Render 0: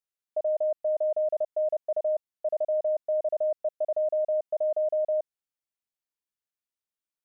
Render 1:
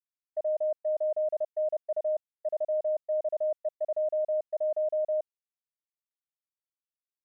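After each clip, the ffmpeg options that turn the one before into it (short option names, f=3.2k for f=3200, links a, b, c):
-af "agate=range=-33dB:threshold=-27dB:ratio=3:detection=peak,volume=-2dB"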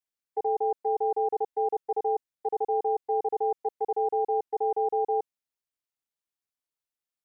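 -af "aeval=exprs='val(0)*sin(2*PI*180*n/s)':c=same,volume=5dB"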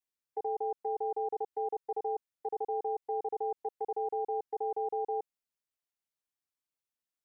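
-af "alimiter=limit=-23.5dB:level=0:latency=1:release=82,volume=-3dB"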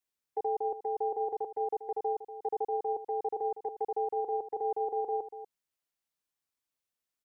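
-af "aecho=1:1:239:0.224,volume=2.5dB"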